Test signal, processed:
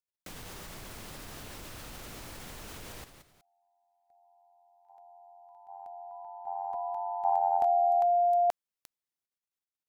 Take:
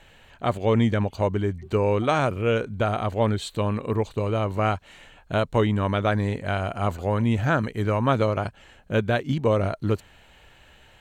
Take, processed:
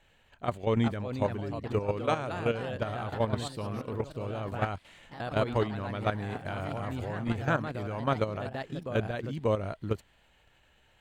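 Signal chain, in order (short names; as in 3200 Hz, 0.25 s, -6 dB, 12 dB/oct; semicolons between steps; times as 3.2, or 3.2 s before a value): echoes that change speed 0.448 s, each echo +2 st, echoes 3, each echo -6 dB; level quantiser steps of 10 dB; gain -4.5 dB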